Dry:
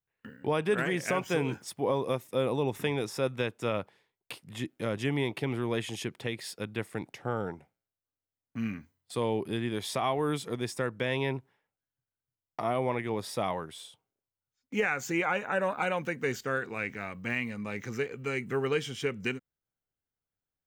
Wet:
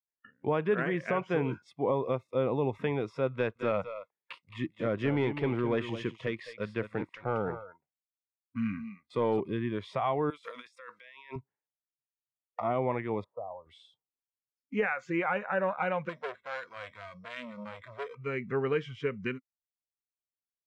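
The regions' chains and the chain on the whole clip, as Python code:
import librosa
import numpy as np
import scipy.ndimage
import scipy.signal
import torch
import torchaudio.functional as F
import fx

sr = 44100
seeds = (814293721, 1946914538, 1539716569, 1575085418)

y = fx.chain(x, sr, fx.low_shelf(hz=190.0, db=-4.5),
    fx.leveller(passes=1),
    fx.echo_single(ms=217, db=-10.0), at=(3.34, 9.4))
y = fx.chain(y, sr, fx.highpass(hz=200.0, slope=12),
    fx.tilt_eq(slope=4.0),
    fx.over_compress(threshold_db=-44.0, ratio=-1.0), at=(10.3, 11.36))
y = fx.chain(y, sr, fx.ladder_lowpass(hz=1100.0, resonance_pct=35),
    fx.env_lowpass_down(base_hz=650.0, full_db=-35.0), at=(13.24, 13.66))
y = fx.chain(y, sr, fx.resample_bad(factor=8, down='filtered', up='hold'),
    fx.transformer_sat(knee_hz=2300.0), at=(16.09, 18.15))
y = scipy.signal.sosfilt(scipy.signal.butter(2, 2000.0, 'lowpass', fs=sr, output='sos'), y)
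y = fx.noise_reduce_blind(y, sr, reduce_db=20)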